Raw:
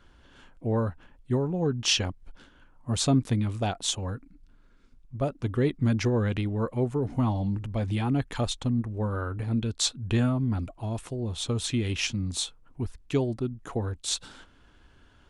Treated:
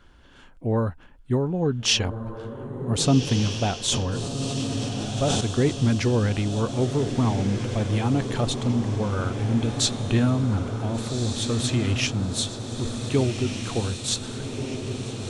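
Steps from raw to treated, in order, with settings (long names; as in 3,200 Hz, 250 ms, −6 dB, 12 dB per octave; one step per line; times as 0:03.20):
feedback delay with all-pass diffusion 1,546 ms, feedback 64%, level −7 dB
0:03.86–0:05.41: level that may fall only so fast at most 22 dB per second
level +3 dB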